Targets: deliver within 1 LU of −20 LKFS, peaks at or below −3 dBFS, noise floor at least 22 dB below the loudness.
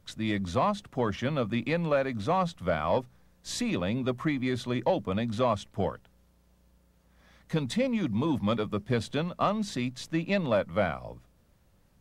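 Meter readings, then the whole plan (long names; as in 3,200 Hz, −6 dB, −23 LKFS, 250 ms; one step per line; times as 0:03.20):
integrated loudness −29.5 LKFS; sample peak −13.5 dBFS; target loudness −20.0 LKFS
→ level +9.5 dB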